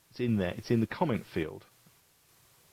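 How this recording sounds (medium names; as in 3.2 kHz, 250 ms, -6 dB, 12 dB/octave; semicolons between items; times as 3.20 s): a quantiser's noise floor 10-bit, dither triangular; random-step tremolo 3.5 Hz; AAC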